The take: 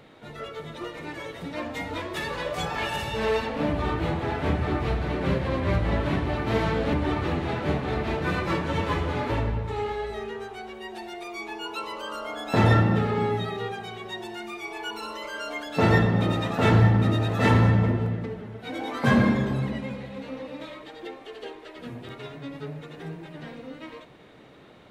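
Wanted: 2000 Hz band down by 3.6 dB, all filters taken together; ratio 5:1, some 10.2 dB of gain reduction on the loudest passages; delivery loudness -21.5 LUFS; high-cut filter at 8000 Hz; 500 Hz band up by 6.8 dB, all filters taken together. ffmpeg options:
-af "lowpass=8k,equalizer=f=500:t=o:g=8.5,equalizer=f=2k:t=o:g=-5,acompressor=threshold=-24dB:ratio=5,volume=8.5dB"

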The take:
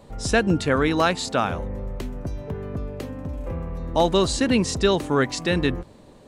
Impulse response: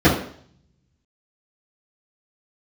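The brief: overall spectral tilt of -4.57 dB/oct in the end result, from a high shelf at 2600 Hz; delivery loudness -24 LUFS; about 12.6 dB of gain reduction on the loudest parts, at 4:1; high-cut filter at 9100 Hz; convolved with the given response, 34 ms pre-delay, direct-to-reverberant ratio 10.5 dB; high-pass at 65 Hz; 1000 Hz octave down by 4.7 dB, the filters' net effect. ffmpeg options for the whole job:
-filter_complex "[0:a]highpass=65,lowpass=9.1k,equalizer=f=1k:t=o:g=-8,highshelf=f=2.6k:g=7.5,acompressor=threshold=-31dB:ratio=4,asplit=2[a][b];[1:a]atrim=start_sample=2205,adelay=34[c];[b][c]afir=irnorm=-1:irlink=0,volume=-34dB[d];[a][d]amix=inputs=2:normalize=0,volume=8dB"

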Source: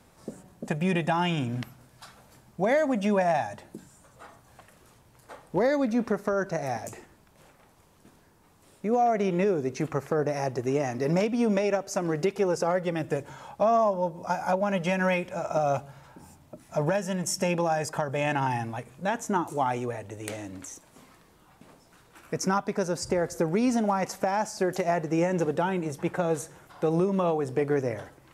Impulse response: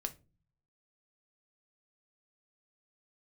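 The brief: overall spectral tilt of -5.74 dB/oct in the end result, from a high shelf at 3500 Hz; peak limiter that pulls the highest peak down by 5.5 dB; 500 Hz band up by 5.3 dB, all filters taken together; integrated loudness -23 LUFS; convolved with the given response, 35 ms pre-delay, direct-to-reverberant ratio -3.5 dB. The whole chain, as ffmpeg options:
-filter_complex "[0:a]equalizer=f=500:t=o:g=6.5,highshelf=f=3.5k:g=3.5,alimiter=limit=-14dB:level=0:latency=1,asplit=2[a][b];[1:a]atrim=start_sample=2205,adelay=35[c];[b][c]afir=irnorm=-1:irlink=0,volume=4dB[d];[a][d]amix=inputs=2:normalize=0,volume=-3.5dB"

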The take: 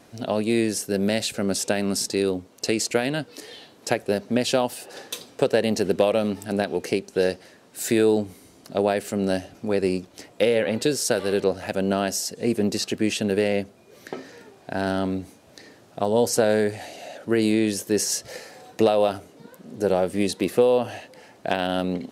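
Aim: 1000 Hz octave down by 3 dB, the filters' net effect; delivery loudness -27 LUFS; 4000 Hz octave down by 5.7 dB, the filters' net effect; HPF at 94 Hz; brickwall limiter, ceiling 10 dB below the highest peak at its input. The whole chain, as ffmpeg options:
-af "highpass=94,equalizer=f=1k:t=o:g=-4.5,equalizer=f=4k:t=o:g=-7.5,volume=2.5dB,alimiter=limit=-15.5dB:level=0:latency=1"

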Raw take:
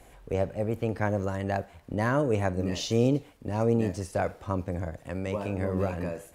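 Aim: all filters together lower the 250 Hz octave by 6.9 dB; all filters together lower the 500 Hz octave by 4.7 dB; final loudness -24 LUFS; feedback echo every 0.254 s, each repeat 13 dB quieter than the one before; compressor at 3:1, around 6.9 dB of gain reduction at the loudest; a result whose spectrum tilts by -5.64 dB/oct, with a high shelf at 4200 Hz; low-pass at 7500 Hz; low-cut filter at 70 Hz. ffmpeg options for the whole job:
-af "highpass=70,lowpass=7.5k,equalizer=f=250:t=o:g=-8,equalizer=f=500:t=o:g=-3.5,highshelf=f=4.2k:g=-6.5,acompressor=threshold=-33dB:ratio=3,aecho=1:1:254|508|762:0.224|0.0493|0.0108,volume=14dB"

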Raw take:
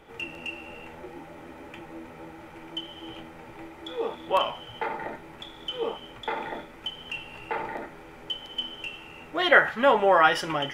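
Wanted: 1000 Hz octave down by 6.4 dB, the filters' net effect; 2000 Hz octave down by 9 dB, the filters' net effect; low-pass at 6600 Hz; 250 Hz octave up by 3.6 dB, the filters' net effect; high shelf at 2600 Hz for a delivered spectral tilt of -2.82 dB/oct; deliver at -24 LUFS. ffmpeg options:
-af "lowpass=6.6k,equalizer=f=250:t=o:g=5.5,equalizer=f=1k:t=o:g=-6,equalizer=f=2k:t=o:g=-8.5,highshelf=f=2.6k:g=-3,volume=7dB"

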